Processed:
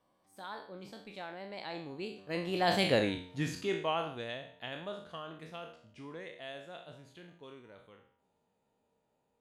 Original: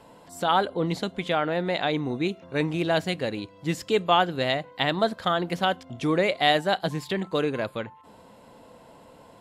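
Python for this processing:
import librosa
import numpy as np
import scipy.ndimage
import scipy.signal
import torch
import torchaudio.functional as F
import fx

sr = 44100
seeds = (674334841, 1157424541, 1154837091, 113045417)

y = fx.spec_trails(x, sr, decay_s=0.54)
y = fx.doppler_pass(y, sr, speed_mps=34, closest_m=6.2, pass_at_s=2.97)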